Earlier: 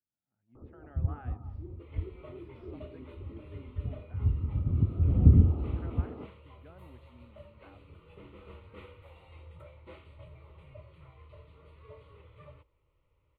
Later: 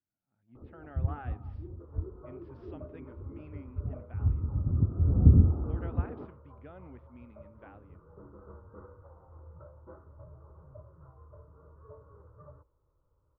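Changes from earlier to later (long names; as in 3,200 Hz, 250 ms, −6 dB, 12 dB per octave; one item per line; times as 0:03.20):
speech +5.5 dB
second sound: add Butterworth low-pass 1,600 Hz 96 dB per octave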